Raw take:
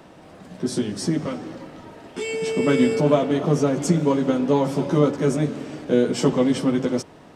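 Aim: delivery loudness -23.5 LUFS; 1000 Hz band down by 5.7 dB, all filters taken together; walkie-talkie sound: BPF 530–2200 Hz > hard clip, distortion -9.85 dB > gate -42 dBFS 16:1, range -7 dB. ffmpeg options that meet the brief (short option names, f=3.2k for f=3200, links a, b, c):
-af "highpass=530,lowpass=2.2k,equalizer=f=1k:t=o:g=-6.5,asoftclip=type=hard:threshold=-24.5dB,agate=range=-7dB:threshold=-42dB:ratio=16,volume=8.5dB"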